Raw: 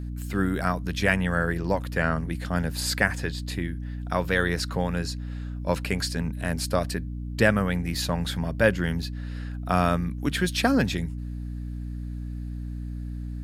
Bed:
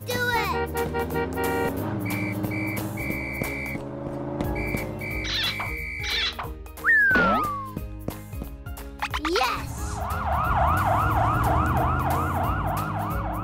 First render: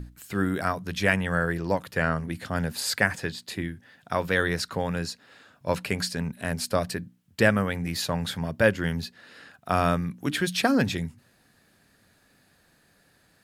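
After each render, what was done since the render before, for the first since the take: hum notches 60/120/180/240/300 Hz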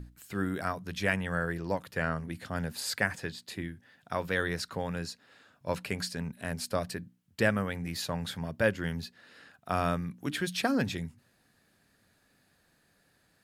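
trim -6 dB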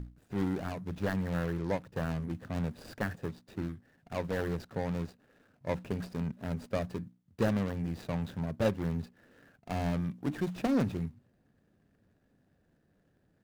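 median filter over 41 samples; in parallel at -8 dB: hard clipper -34 dBFS, distortion -7 dB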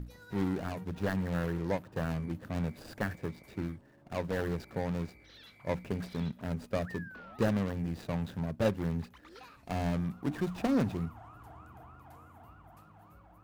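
add bed -29.5 dB

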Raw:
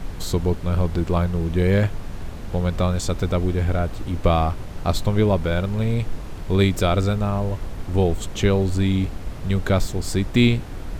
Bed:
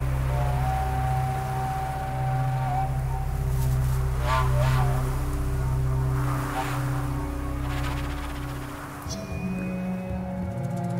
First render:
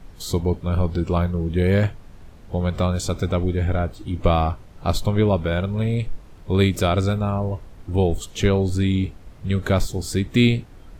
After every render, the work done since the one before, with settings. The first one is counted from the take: noise print and reduce 12 dB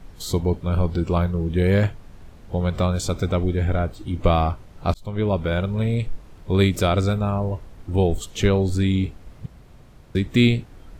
4.94–5.63 s: fade in equal-power; 9.46–10.15 s: room tone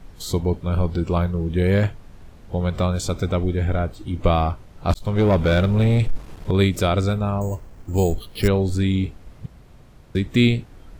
4.90–6.51 s: waveshaping leveller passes 2; 7.41–8.48 s: careless resampling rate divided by 6×, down filtered, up hold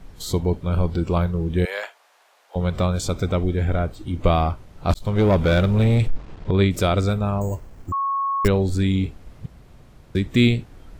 1.65–2.56 s: high-pass 650 Hz 24 dB/octave; 6.09–6.71 s: distance through air 120 m; 7.92–8.45 s: bleep 1.1 kHz -20 dBFS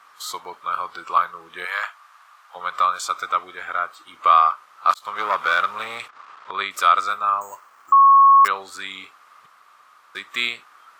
resonant high-pass 1.2 kHz, resonance Q 7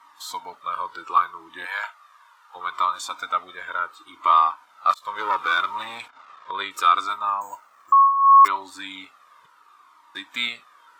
small resonant body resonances 290/940/3600 Hz, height 12 dB, ringing for 50 ms; Shepard-style flanger falling 0.7 Hz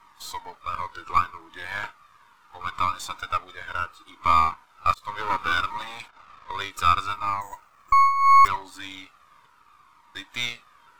partial rectifier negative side -7 dB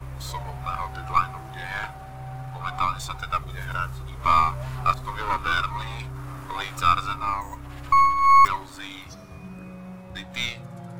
add bed -10.5 dB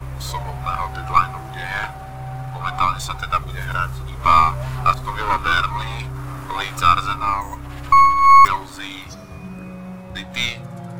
trim +6 dB; peak limiter -1 dBFS, peak gain reduction 1.5 dB

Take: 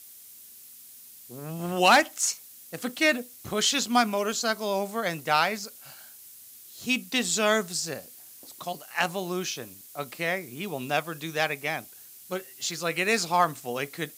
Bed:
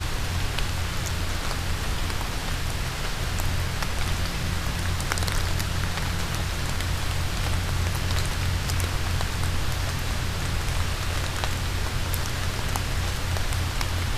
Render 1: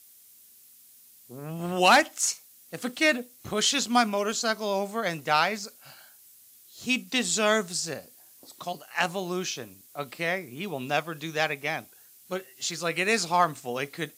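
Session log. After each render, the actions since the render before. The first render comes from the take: noise print and reduce 6 dB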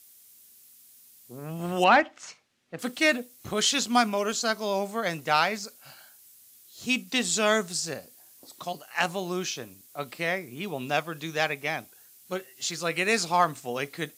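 1.84–2.79 s: low-pass 2.4 kHz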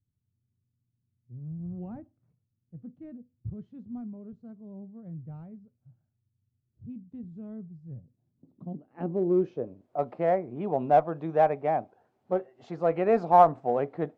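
low-pass sweep 110 Hz -> 730 Hz, 7.90–9.97 s; in parallel at -12 dB: one-sided clip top -22.5 dBFS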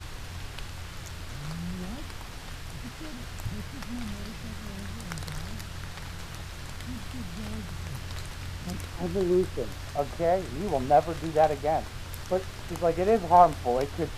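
add bed -12 dB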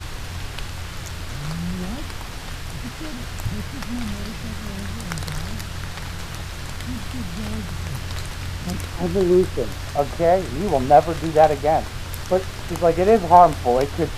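trim +8 dB; peak limiter -1 dBFS, peak gain reduction 3 dB

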